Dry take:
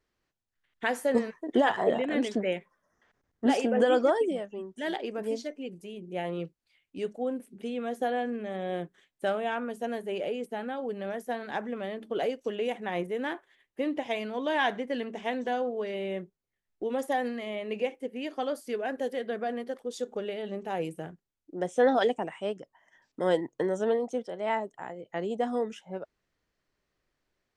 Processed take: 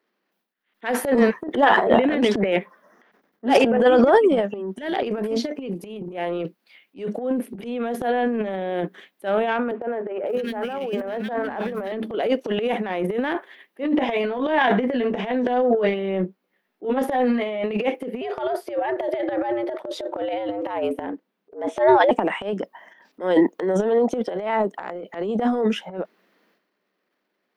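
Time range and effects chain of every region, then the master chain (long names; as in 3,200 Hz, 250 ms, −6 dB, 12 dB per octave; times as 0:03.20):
0:09.71–0:11.92: running median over 9 samples + mains-hum notches 50/100/150/200/250/300/350/400 Hz + three-band delay without the direct sound mids, highs, lows 550/650 ms, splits 250/2,100 Hz
0:13.82–0:17.64: high-shelf EQ 4,400 Hz −8 dB + double-tracking delay 16 ms −5 dB
0:18.21–0:22.11: high-shelf EQ 4,600 Hz −12 dB + frequency shifter +110 Hz
whole clip: elliptic high-pass filter 190 Hz; parametric band 7,400 Hz −14 dB 1 octave; transient designer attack −11 dB, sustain +12 dB; level +8 dB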